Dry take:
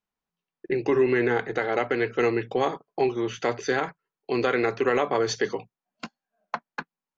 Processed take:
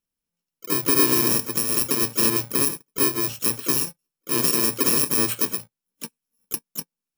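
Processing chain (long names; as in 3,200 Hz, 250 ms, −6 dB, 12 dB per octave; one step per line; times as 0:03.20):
samples in bit-reversed order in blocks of 64 samples
pitch-shifted copies added +4 semitones −9 dB
level +2.5 dB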